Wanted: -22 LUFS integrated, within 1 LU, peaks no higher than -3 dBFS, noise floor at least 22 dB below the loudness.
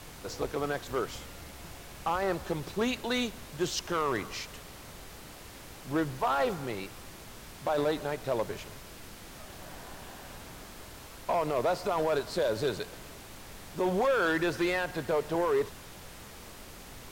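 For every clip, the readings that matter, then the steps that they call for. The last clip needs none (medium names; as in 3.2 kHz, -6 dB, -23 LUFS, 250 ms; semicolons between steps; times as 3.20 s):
clipped samples 1.2%; clipping level -22.0 dBFS; noise floor -48 dBFS; noise floor target -54 dBFS; loudness -31.5 LUFS; peak level -22.0 dBFS; loudness target -22.0 LUFS
-> clip repair -22 dBFS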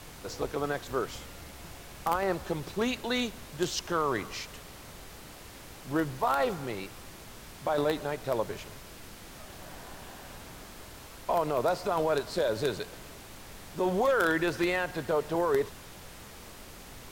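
clipped samples 0.0%; noise floor -48 dBFS; noise floor target -53 dBFS
-> noise print and reduce 6 dB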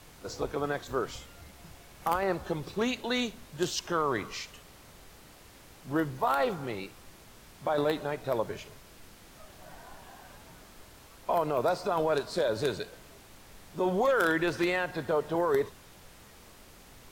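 noise floor -54 dBFS; loudness -30.5 LUFS; peak level -13.0 dBFS; loudness target -22.0 LUFS
-> trim +8.5 dB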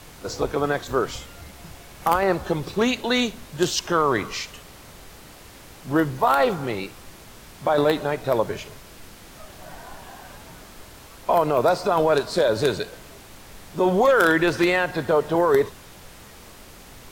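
loudness -22.0 LUFS; peak level -4.5 dBFS; noise floor -45 dBFS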